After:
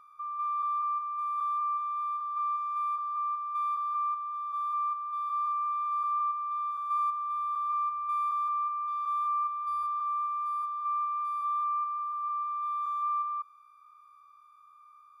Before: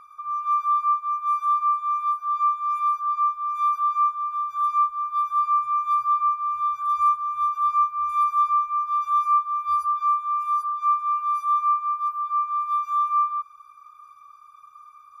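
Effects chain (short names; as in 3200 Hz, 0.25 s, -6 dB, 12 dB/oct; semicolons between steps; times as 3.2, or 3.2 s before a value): stepped spectrum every 0.2 s; notch comb 540 Hz; gain -6.5 dB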